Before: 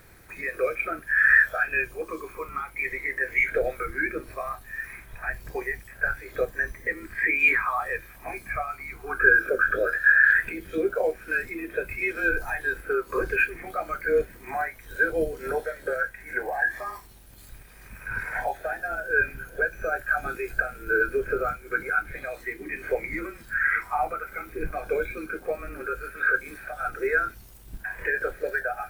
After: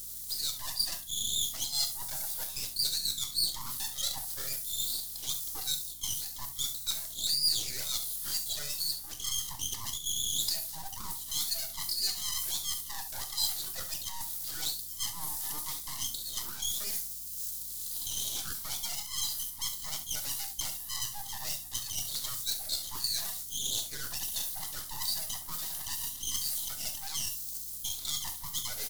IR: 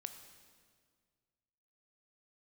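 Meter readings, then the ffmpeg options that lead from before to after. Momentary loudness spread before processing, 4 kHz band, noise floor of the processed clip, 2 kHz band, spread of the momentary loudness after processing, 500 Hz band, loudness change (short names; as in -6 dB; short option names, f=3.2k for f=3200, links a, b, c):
14 LU, n/a, -43 dBFS, -28.0 dB, 6 LU, -28.5 dB, -6.5 dB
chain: -filter_complex "[0:a]highpass=320,areverse,acompressor=threshold=-32dB:ratio=6,areverse,aeval=exprs='abs(val(0))':c=same,aexciter=amount=13.5:drive=5.8:freq=3.9k,aecho=1:1:42|68:0.133|0.188,asplit=2[a][b];[b]asoftclip=type=hard:threshold=-24.5dB,volume=-7dB[c];[a][c]amix=inputs=2:normalize=0[d];[1:a]atrim=start_sample=2205,atrim=end_sample=3528[e];[d][e]afir=irnorm=-1:irlink=0,aeval=exprs='val(0)+0.00178*(sin(2*PI*60*n/s)+sin(2*PI*2*60*n/s)/2+sin(2*PI*3*60*n/s)/3+sin(2*PI*4*60*n/s)/4+sin(2*PI*5*60*n/s)/5)':c=same,volume=-5dB"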